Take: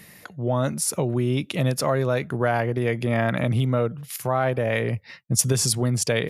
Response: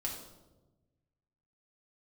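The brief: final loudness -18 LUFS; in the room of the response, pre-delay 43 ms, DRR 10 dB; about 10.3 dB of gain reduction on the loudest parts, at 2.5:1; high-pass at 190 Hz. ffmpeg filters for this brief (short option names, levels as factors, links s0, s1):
-filter_complex "[0:a]highpass=190,acompressor=threshold=0.0282:ratio=2.5,asplit=2[s0][s1];[1:a]atrim=start_sample=2205,adelay=43[s2];[s1][s2]afir=irnorm=-1:irlink=0,volume=0.282[s3];[s0][s3]amix=inputs=2:normalize=0,volume=4.73"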